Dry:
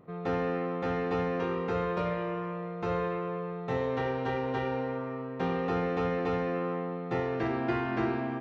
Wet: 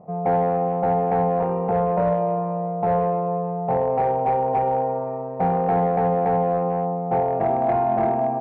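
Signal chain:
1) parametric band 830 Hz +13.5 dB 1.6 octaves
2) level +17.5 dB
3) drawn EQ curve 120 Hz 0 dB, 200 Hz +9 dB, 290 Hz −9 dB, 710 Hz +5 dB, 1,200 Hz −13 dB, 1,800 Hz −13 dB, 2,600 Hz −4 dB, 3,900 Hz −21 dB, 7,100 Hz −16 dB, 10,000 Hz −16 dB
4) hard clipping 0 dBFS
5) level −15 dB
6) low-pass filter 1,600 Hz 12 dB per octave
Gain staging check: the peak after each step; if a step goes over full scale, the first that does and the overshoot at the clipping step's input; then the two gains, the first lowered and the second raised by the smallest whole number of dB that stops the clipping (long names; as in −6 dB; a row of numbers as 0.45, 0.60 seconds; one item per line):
−10.0, +7.5, +7.5, 0.0, −15.0, −14.5 dBFS
step 2, 7.5 dB
step 2 +9.5 dB, step 5 −7 dB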